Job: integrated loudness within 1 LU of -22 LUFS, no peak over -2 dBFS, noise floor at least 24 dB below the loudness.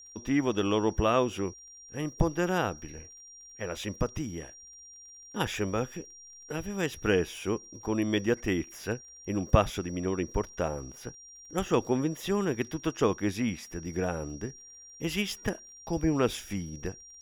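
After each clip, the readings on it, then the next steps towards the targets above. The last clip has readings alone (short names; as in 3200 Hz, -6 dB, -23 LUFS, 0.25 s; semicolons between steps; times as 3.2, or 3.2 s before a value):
ticks 30/s; steady tone 5700 Hz; tone level -48 dBFS; loudness -31.0 LUFS; peak -8.0 dBFS; loudness target -22.0 LUFS
-> de-click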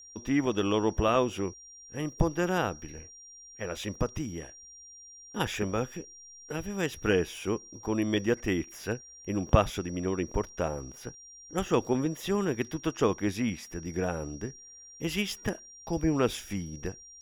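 ticks 0.23/s; steady tone 5700 Hz; tone level -48 dBFS
-> notch 5700 Hz, Q 30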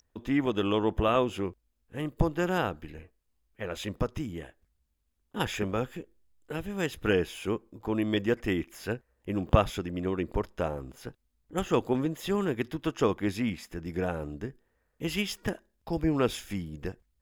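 steady tone none; loudness -31.0 LUFS; peak -8.0 dBFS; loudness target -22.0 LUFS
-> gain +9 dB; limiter -2 dBFS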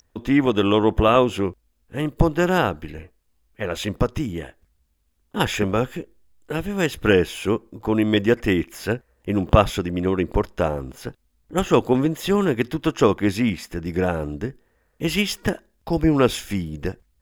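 loudness -22.0 LUFS; peak -2.0 dBFS; noise floor -67 dBFS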